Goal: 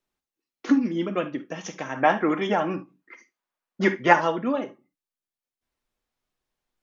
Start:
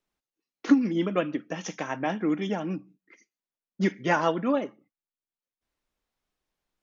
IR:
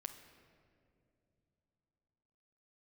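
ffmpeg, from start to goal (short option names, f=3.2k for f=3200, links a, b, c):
-filter_complex "[0:a]asplit=3[a][b][c];[a]afade=t=out:st=1.95:d=0.02[d];[b]equalizer=f=1.1k:t=o:w=2.6:g=13,afade=t=in:st=1.95:d=0.02,afade=t=out:st=4.12:d=0.02[e];[c]afade=t=in:st=4.12:d=0.02[f];[d][e][f]amix=inputs=3:normalize=0[g];[1:a]atrim=start_sample=2205,atrim=end_sample=3528[h];[g][h]afir=irnorm=-1:irlink=0,volume=4dB"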